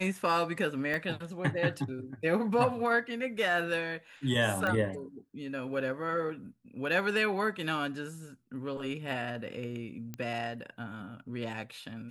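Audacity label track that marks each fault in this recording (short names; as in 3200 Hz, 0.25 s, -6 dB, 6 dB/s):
0.940000	0.940000	pop -21 dBFS
4.670000	4.670000	pop -19 dBFS
10.140000	10.140000	pop -24 dBFS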